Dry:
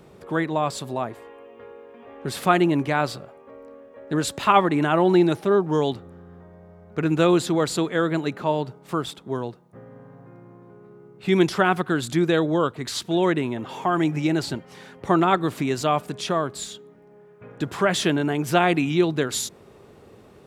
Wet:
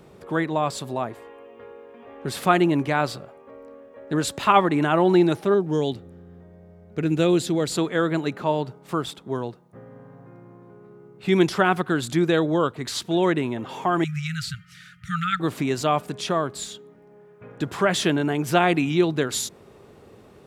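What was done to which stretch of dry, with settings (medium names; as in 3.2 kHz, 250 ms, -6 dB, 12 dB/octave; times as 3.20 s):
5.54–7.72 s: peaking EQ 1.1 kHz -9.5 dB 1.2 oct
14.04–15.40 s: brick-wall FIR band-stop 190–1200 Hz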